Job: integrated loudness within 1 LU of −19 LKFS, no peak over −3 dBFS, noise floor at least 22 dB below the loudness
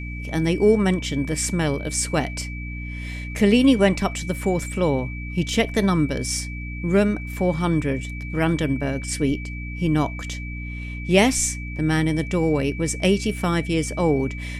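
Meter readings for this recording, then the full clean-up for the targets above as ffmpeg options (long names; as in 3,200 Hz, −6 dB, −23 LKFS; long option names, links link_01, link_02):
mains hum 60 Hz; hum harmonics up to 300 Hz; level of the hum −29 dBFS; interfering tone 2,300 Hz; level of the tone −36 dBFS; integrated loudness −22.5 LKFS; sample peak −3.0 dBFS; target loudness −19.0 LKFS
→ -af "bandreject=frequency=60:width_type=h:width=4,bandreject=frequency=120:width_type=h:width=4,bandreject=frequency=180:width_type=h:width=4,bandreject=frequency=240:width_type=h:width=4,bandreject=frequency=300:width_type=h:width=4"
-af "bandreject=frequency=2300:width=30"
-af "volume=3.5dB,alimiter=limit=-3dB:level=0:latency=1"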